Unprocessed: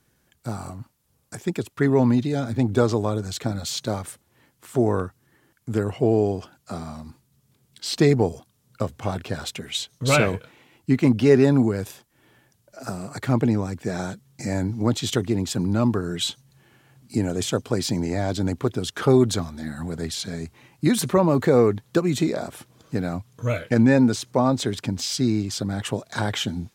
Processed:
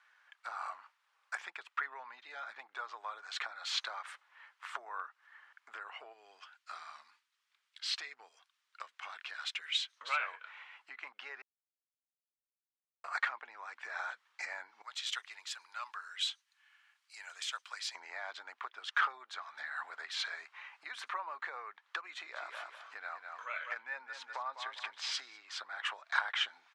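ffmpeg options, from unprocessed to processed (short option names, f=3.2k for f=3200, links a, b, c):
-filter_complex "[0:a]asplit=3[a][b][c];[a]afade=t=out:st=6.12:d=0.02[d];[b]equalizer=f=750:t=o:w=2.6:g=-14,afade=t=in:st=6.12:d=0.02,afade=t=out:st=9.96:d=0.02[e];[c]afade=t=in:st=9.96:d=0.02[f];[d][e][f]amix=inputs=3:normalize=0,asettb=1/sr,asplit=3[g][h][i];[g]atrim=end=14.824[j];[h]atrim=start=14.82:end=17.95,asetpts=PTS-STARTPTS,afade=t=in:d=0.004:c=qsin,afade=t=out:st=3.126:d=0.004:c=qsin,aderivative[k];[i]atrim=start=17.946[l];[j][k]acrossfade=d=0.004:c1=hsin:c2=qsin[m];[m][l]acrossfade=d=0.004:c1=qsin:c2=hsin,asplit=3[n][o][p];[n]afade=t=out:st=22.23:d=0.02[q];[o]aecho=1:1:200|400|600:0.282|0.062|0.0136,afade=t=in:st=22.23:d=0.02,afade=t=out:st=25.39:d=0.02[r];[p]afade=t=in:st=25.39:d=0.02[s];[q][r][s]amix=inputs=3:normalize=0,asplit=3[t][u][v];[t]atrim=end=11.42,asetpts=PTS-STARTPTS,afade=t=out:st=11.416:d=0.004:c=hsin[w];[u]atrim=start=11.42:end=13.04,asetpts=PTS-STARTPTS,volume=0[x];[v]atrim=start=13.04,asetpts=PTS-STARTPTS,afade=t=in:d=0.004:c=hsin[y];[w][x][y]concat=n=3:v=0:a=1,lowpass=2k,acompressor=threshold=-32dB:ratio=10,highpass=f=1.1k:w=0.5412,highpass=f=1.1k:w=1.3066,volume=9dB"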